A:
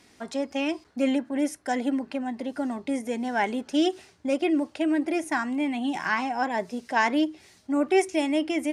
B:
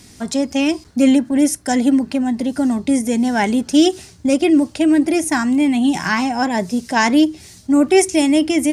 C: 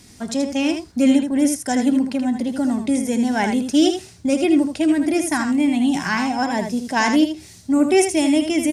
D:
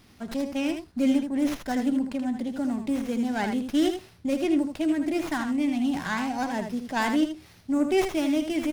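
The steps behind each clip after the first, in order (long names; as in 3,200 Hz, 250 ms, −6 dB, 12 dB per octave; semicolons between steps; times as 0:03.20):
bass and treble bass +15 dB, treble +12 dB; level +6 dB
single-tap delay 79 ms −7 dB; level −3.5 dB
windowed peak hold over 5 samples; level −7.5 dB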